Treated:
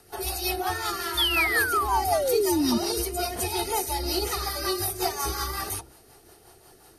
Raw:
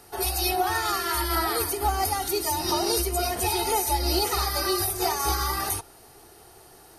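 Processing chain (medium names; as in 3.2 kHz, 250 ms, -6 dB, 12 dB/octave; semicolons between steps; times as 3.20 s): de-hum 66.43 Hz, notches 15; painted sound fall, 1.17–2.78 s, 220–3600 Hz -22 dBFS; rotary cabinet horn 5.5 Hz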